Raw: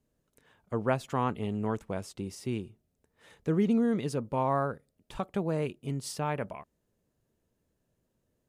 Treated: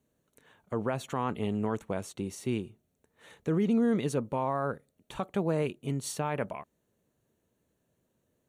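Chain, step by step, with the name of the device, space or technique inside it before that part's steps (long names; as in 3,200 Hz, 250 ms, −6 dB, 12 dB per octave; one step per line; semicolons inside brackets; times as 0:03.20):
PA system with an anti-feedback notch (high-pass filter 110 Hz 6 dB per octave; Butterworth band-reject 5,000 Hz, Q 6.4; brickwall limiter −22.5 dBFS, peak gain reduction 9 dB)
level +3 dB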